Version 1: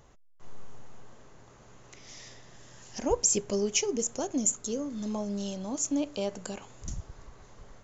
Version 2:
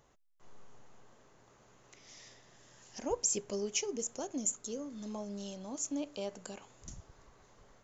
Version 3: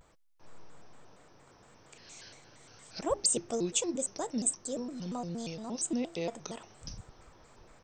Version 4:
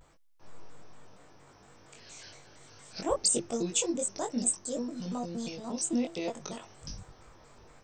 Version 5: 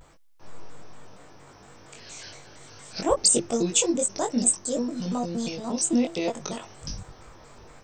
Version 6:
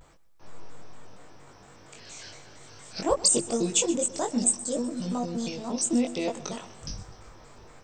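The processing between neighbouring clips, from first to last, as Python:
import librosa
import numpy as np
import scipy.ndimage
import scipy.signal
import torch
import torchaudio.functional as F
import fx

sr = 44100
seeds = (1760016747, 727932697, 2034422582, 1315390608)

y1 = fx.low_shelf(x, sr, hz=140.0, db=-8.0)
y1 = F.gain(torch.from_numpy(y1), -6.5).numpy()
y2 = fx.vibrato_shape(y1, sr, shape='square', rate_hz=4.3, depth_cents=250.0)
y2 = F.gain(torch.from_numpy(y2), 4.0).numpy()
y3 = fx.doubler(y2, sr, ms=21.0, db=-3)
y4 = fx.end_taper(y3, sr, db_per_s=530.0)
y4 = F.gain(torch.from_numpy(y4), 7.0).numpy()
y5 = fx.echo_feedback(y4, sr, ms=126, feedback_pct=58, wet_db=-17.5)
y5 = F.gain(torch.from_numpy(y5), -2.0).numpy()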